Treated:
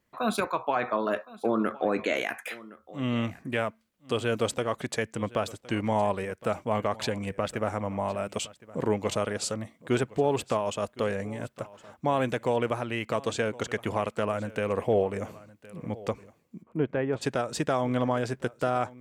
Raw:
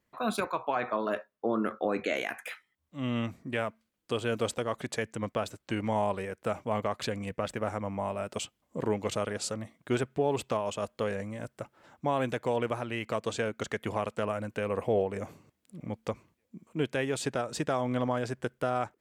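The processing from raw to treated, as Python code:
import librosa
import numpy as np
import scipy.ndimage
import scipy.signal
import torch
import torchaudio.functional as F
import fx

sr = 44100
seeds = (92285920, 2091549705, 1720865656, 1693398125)

y = fx.lowpass(x, sr, hz=1400.0, slope=12, at=(16.62, 17.21), fade=0.02)
y = y + 10.0 ** (-20.0 / 20.0) * np.pad(y, (int(1064 * sr / 1000.0), 0))[:len(y)]
y = F.gain(torch.from_numpy(y), 3.0).numpy()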